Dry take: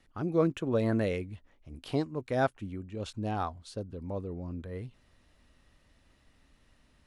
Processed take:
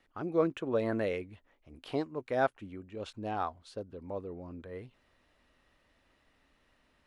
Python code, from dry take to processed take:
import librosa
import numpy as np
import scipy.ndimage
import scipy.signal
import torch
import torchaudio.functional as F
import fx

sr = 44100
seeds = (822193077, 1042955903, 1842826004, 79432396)

y = fx.bass_treble(x, sr, bass_db=-10, treble_db=-8)